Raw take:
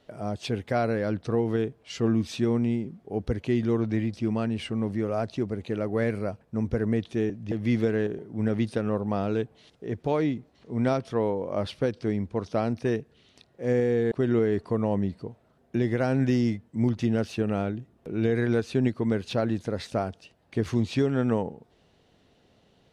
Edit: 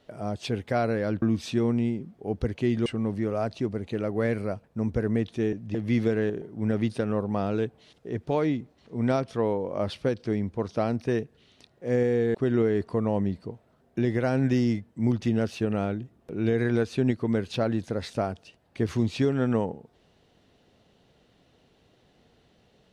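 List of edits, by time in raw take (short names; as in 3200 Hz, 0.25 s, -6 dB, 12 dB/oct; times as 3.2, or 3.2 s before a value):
1.22–2.08 cut
3.72–4.63 cut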